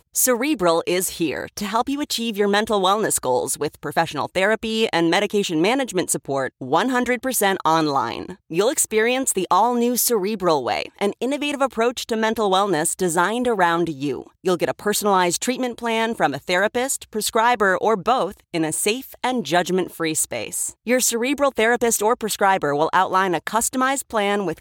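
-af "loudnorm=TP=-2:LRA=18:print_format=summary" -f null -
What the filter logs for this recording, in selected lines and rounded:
Input Integrated:    -20.4 LUFS
Input True Peak:      -5.7 dBTP
Input LRA:             1.6 LU
Input Threshold:     -30.4 LUFS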